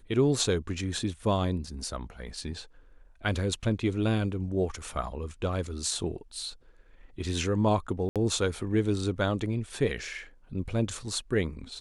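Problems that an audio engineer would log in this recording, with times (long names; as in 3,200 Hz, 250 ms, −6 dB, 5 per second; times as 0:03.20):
0:08.09–0:08.16: drop-out 67 ms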